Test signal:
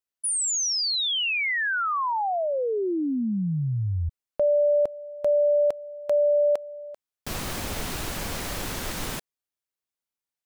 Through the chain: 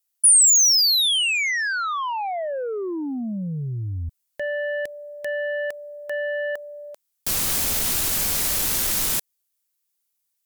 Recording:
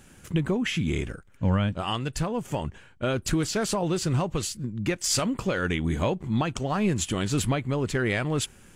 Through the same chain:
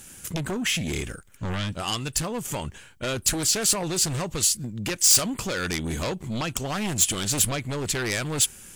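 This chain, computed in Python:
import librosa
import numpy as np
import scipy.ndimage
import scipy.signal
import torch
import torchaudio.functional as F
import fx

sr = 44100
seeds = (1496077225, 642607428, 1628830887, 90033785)

y = fx.fold_sine(x, sr, drive_db=8, ceiling_db=-13.0)
y = librosa.effects.preemphasis(y, coef=0.8, zi=[0.0])
y = y * 10.0 ** (2.0 / 20.0)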